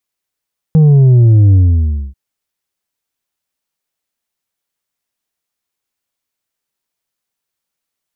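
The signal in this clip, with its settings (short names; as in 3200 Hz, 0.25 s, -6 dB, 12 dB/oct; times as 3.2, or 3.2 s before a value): sub drop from 160 Hz, over 1.39 s, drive 4.5 dB, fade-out 0.60 s, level -4.5 dB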